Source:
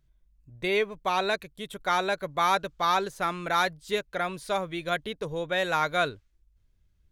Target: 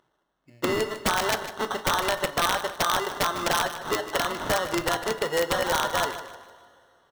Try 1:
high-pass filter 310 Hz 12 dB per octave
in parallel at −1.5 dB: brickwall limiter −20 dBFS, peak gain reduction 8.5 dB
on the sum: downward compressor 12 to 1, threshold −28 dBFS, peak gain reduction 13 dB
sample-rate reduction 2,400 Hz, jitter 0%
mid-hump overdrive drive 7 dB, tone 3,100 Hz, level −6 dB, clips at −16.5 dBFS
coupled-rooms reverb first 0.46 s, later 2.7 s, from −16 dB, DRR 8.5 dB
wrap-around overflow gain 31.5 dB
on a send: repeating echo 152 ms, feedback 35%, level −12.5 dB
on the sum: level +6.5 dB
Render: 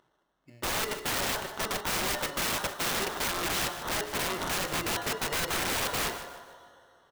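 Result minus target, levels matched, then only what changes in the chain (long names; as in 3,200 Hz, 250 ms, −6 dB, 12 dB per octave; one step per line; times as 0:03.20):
wrap-around overflow: distortion +21 dB
change: wrap-around overflow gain 22 dB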